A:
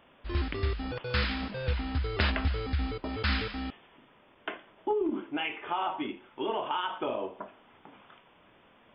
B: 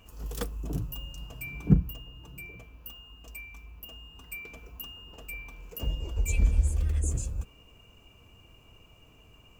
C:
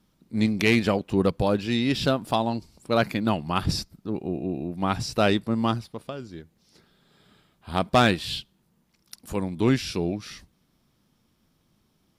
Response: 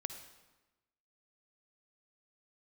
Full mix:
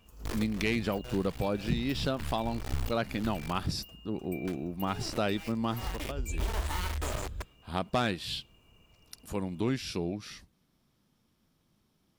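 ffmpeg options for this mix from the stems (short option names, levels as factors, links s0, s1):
-filter_complex "[0:a]asubboost=boost=7.5:cutoff=100,acompressor=threshold=0.0447:ratio=2,acrusher=bits=3:dc=4:mix=0:aa=0.000001,volume=1.12[s0];[1:a]volume=0.473[s1];[2:a]volume=0.596,asplit=2[s2][s3];[s3]apad=whole_len=394501[s4];[s0][s4]sidechaincompress=threshold=0.0158:ratio=5:attack=10:release=287[s5];[s5][s1][s2]amix=inputs=3:normalize=0,acompressor=threshold=0.0355:ratio=2"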